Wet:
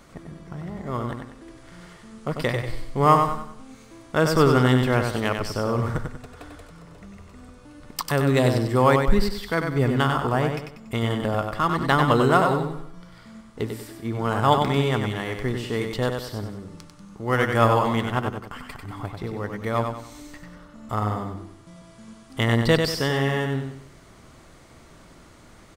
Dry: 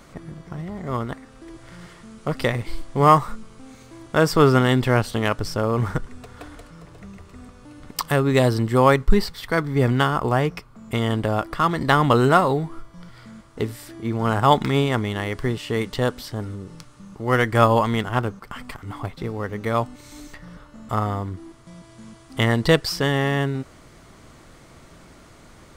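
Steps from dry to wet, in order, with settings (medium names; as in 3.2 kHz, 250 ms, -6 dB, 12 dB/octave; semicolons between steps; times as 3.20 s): feedback delay 95 ms, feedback 38%, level -5.5 dB; trim -3 dB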